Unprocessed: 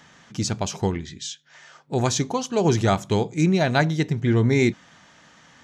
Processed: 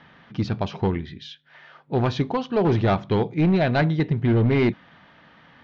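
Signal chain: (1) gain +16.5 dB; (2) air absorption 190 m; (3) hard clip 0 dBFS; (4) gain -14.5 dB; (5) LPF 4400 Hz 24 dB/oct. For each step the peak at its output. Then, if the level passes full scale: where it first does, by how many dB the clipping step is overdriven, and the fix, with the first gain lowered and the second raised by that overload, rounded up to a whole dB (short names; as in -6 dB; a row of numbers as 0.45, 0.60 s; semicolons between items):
+11.0, +10.0, 0.0, -14.5, -13.0 dBFS; step 1, 10.0 dB; step 1 +6.5 dB, step 4 -4.5 dB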